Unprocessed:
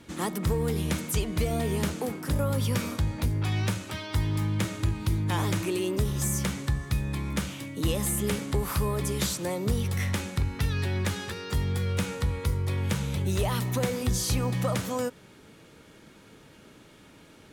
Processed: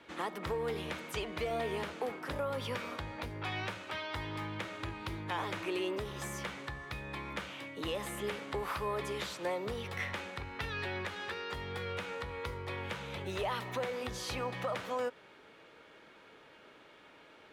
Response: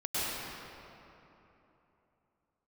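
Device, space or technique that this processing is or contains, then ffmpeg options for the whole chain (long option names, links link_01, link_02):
DJ mixer with the lows and highs turned down: -filter_complex "[0:a]acrossover=split=400 3800:gain=0.141 1 0.126[link_01][link_02][link_03];[link_01][link_02][link_03]amix=inputs=3:normalize=0,alimiter=level_in=1.5dB:limit=-24dB:level=0:latency=1:release=238,volume=-1.5dB"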